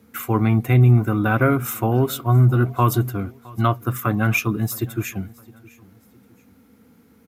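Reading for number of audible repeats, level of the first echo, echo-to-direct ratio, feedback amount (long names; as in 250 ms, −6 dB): 2, −23.0 dB, −22.5 dB, 37%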